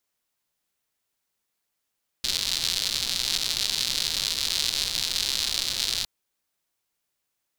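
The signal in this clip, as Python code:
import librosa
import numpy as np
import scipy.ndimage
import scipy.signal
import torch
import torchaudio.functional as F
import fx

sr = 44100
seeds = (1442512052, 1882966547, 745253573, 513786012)

y = fx.rain(sr, seeds[0], length_s=3.81, drops_per_s=170.0, hz=4100.0, bed_db=-14.5)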